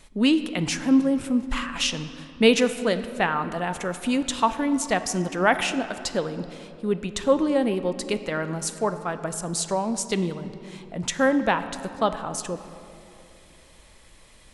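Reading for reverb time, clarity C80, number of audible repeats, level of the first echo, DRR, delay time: 2.8 s, 12.0 dB, no echo, no echo, 10.5 dB, no echo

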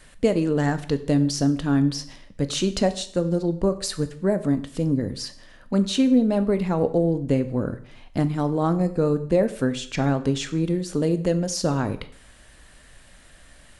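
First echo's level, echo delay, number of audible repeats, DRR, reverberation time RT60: no echo, no echo, no echo, 10.5 dB, 0.55 s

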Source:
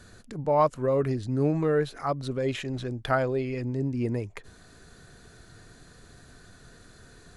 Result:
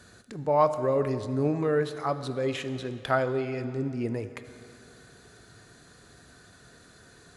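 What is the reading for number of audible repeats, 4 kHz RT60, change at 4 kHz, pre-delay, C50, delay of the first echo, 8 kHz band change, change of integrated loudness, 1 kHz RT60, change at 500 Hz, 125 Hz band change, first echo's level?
no echo, 2.2 s, +0.5 dB, 17 ms, 11.5 dB, no echo, +0.5 dB, -0.5 dB, 2.5 s, 0.0 dB, -3.0 dB, no echo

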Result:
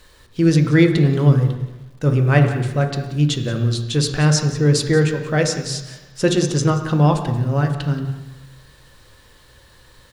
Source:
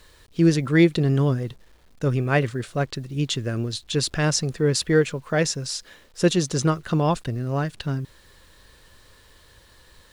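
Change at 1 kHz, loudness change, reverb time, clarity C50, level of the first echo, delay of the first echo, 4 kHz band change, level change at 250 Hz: +4.0 dB, +5.0 dB, 1.1 s, 7.5 dB, -15.5 dB, 180 ms, +2.5 dB, +4.5 dB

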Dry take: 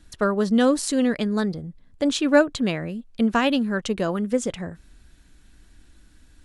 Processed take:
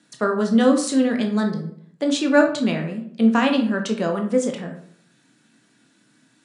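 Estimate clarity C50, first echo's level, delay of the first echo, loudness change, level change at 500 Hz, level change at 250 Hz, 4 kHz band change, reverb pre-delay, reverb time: 9.0 dB, no echo, no echo, +2.0 dB, +1.5 dB, +3.0 dB, +0.5 dB, 15 ms, 0.60 s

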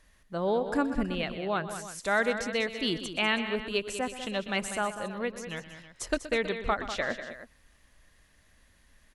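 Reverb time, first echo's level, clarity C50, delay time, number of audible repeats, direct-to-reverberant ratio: no reverb, -14.5 dB, no reverb, 123 ms, 3, no reverb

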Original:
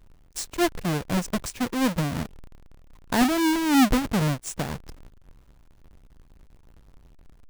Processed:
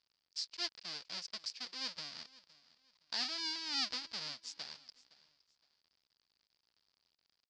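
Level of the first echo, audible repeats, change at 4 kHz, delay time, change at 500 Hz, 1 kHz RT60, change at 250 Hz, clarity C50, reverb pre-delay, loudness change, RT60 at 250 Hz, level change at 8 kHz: -20.5 dB, 2, -3.5 dB, 514 ms, -28.0 dB, no reverb, -33.5 dB, no reverb, no reverb, -15.0 dB, no reverb, -15.5 dB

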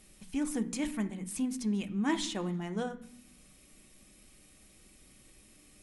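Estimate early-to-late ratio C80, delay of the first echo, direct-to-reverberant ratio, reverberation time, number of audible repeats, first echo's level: 18.5 dB, no echo, 6.5 dB, 0.70 s, no echo, no echo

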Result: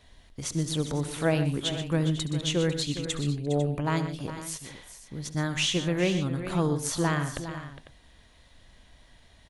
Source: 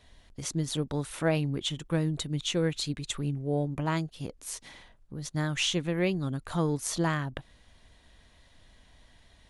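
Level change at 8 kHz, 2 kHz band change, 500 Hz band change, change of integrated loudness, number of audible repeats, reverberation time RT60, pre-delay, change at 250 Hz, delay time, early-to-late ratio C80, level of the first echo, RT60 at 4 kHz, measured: +2.5 dB, +2.5 dB, +2.5 dB, +2.5 dB, 4, no reverb, no reverb, +2.5 dB, 69 ms, no reverb, -16.5 dB, no reverb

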